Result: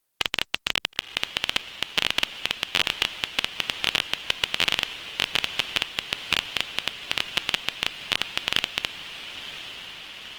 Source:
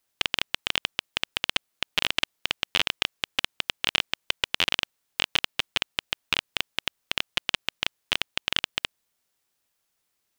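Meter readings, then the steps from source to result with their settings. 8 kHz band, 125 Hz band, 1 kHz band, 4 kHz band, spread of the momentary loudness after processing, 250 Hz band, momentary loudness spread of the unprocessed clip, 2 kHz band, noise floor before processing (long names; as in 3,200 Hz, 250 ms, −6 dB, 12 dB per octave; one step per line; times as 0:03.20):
+2.5 dB, +2.0 dB, +2.0 dB, +2.0 dB, 12 LU, +2.0 dB, 5 LU, +2.0 dB, −77 dBFS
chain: high-shelf EQ 10,000 Hz +2.5 dB
feedback delay with all-pass diffusion 973 ms, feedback 71%, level −12 dB
level +1.5 dB
Opus 24 kbit/s 48,000 Hz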